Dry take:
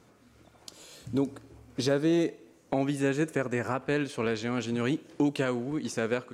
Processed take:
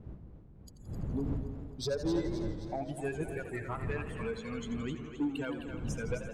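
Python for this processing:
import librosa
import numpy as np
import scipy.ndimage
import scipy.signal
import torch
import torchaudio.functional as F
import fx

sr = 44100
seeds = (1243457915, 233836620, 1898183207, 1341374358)

y = fx.bin_expand(x, sr, power=3.0)
y = fx.dmg_wind(y, sr, seeds[0], corner_hz=150.0, level_db=-40.0)
y = 10.0 ** (-24.0 / 20.0) * np.tanh(y / 10.0 ** (-24.0 / 20.0))
y = fx.echo_split(y, sr, split_hz=380.0, low_ms=143, high_ms=262, feedback_pct=52, wet_db=-9.0)
y = fx.echo_warbled(y, sr, ms=83, feedback_pct=75, rate_hz=2.8, cents=121, wet_db=-11.5)
y = F.gain(torch.from_numpy(y), -1.5).numpy()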